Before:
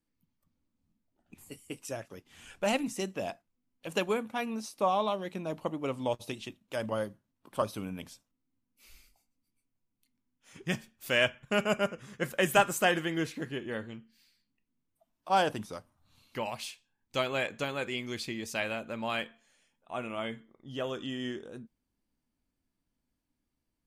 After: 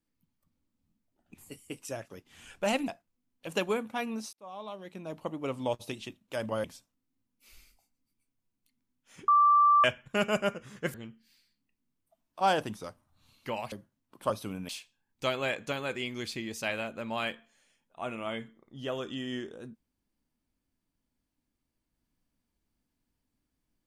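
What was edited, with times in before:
2.88–3.28 s: delete
4.73–5.96 s: fade in
7.04–8.01 s: move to 16.61 s
10.65–11.21 s: bleep 1.17 kHz -18 dBFS
12.31–13.83 s: delete

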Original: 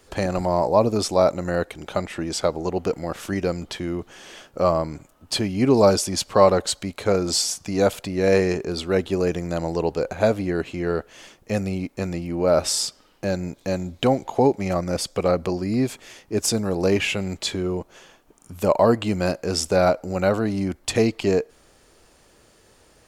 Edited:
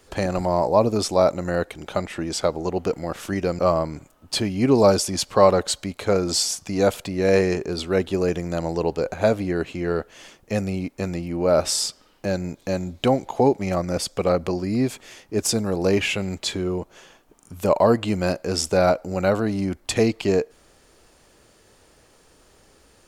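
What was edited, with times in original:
3.59–4.58 s: delete

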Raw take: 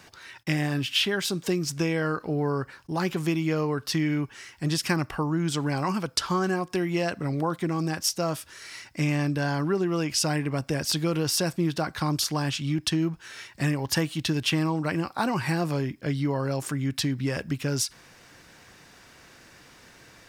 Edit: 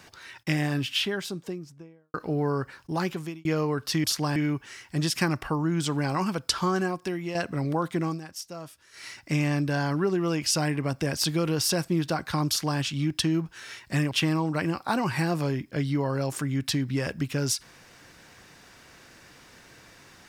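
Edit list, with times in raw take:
0.67–2.14 s: studio fade out
2.97–3.45 s: fade out
6.43–7.03 s: fade out, to -8 dB
7.75–8.72 s: dip -12 dB, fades 0.13 s
12.16–12.48 s: copy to 4.04 s
13.79–14.41 s: delete

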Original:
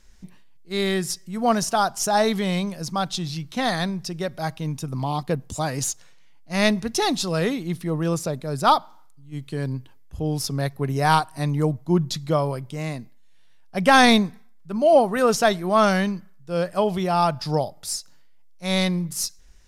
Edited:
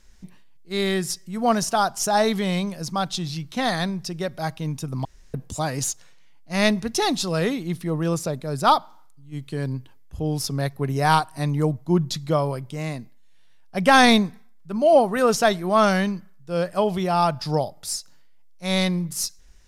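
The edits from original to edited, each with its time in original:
5.05–5.34 s: room tone

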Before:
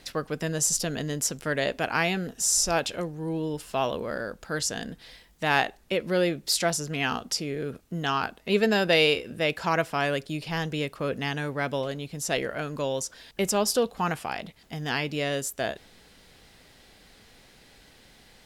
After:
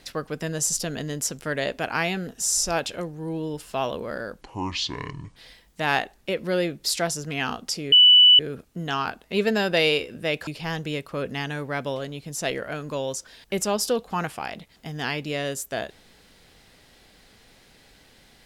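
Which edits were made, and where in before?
4.41–4.99 s: speed 61%
7.55 s: add tone 2.97 kHz -9.5 dBFS 0.47 s
9.63–10.34 s: delete

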